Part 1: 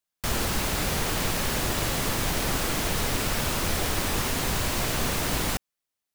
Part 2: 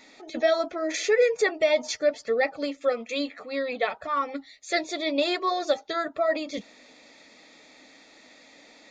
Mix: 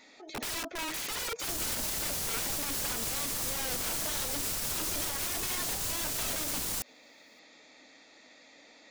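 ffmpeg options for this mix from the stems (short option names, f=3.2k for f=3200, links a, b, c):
-filter_complex "[0:a]bass=f=250:g=-2,treble=f=4k:g=12,adelay=1250,volume=0.5dB[a];[1:a]lowshelf=f=260:g=-3.5,aeval=exprs='(mod(22.4*val(0)+1,2)-1)/22.4':c=same,volume=-3.5dB,asplit=2[b][c];[c]apad=whole_len=325917[d];[a][d]sidechaincompress=threshold=-45dB:ratio=8:attack=16:release=919[e];[e][b]amix=inputs=2:normalize=0,alimiter=limit=-23dB:level=0:latency=1:release=103"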